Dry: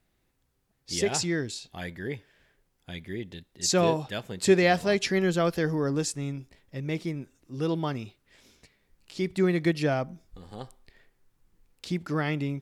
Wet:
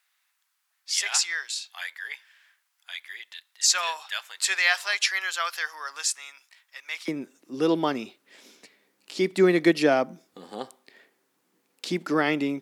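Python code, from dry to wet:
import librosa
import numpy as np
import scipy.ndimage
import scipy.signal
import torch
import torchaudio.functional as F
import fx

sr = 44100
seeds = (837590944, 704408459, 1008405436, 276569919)

y = fx.highpass(x, sr, hz=fx.steps((0.0, 1100.0), (7.08, 230.0)), slope=24)
y = y * 10.0 ** (6.5 / 20.0)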